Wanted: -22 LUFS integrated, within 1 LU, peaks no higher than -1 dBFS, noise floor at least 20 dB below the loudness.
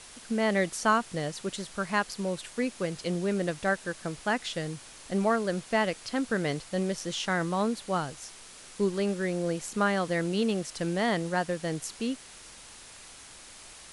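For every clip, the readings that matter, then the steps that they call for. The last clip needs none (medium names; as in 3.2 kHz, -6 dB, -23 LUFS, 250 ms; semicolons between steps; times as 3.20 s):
noise floor -49 dBFS; noise floor target -50 dBFS; loudness -30.0 LUFS; peak level -12.0 dBFS; loudness target -22.0 LUFS
-> noise reduction 6 dB, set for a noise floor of -49 dBFS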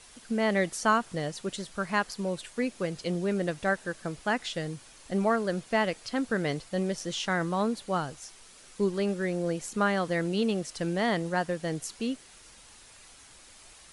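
noise floor -53 dBFS; loudness -30.0 LUFS; peak level -12.0 dBFS; loudness target -22.0 LUFS
-> trim +8 dB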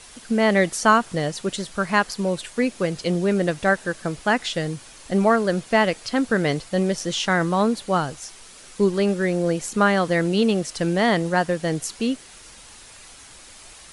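loudness -22.0 LUFS; peak level -4.0 dBFS; noise floor -45 dBFS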